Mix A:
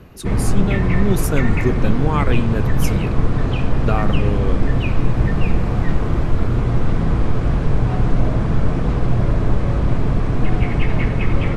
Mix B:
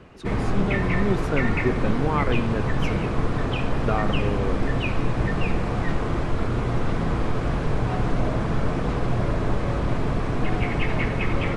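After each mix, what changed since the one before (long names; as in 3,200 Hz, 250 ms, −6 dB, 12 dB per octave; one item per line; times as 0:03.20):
speech: add head-to-tape spacing loss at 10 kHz 25 dB
master: add low-shelf EQ 230 Hz −9 dB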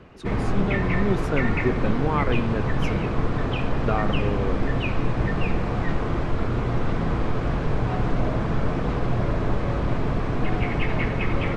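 background: add high-frequency loss of the air 63 metres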